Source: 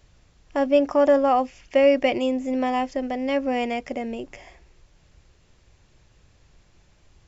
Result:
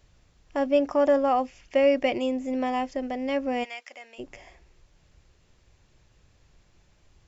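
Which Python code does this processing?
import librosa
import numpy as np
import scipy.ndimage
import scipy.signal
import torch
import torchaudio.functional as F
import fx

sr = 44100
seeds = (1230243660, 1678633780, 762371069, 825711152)

y = fx.highpass(x, sr, hz=1300.0, slope=12, at=(3.63, 4.18), fade=0.02)
y = F.gain(torch.from_numpy(y), -3.5).numpy()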